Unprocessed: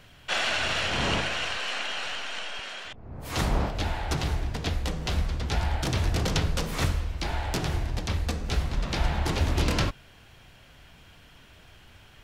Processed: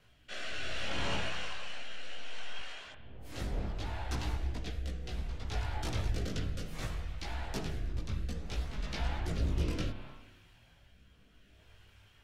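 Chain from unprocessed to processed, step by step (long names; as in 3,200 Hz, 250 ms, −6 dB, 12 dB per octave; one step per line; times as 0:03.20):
spring reverb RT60 1.5 s, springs 30/51 ms, chirp 60 ms, DRR 7.5 dB
multi-voice chorus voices 4, 0.41 Hz, delay 18 ms, depth 2.4 ms
rotating-speaker cabinet horn 0.65 Hz
level −6 dB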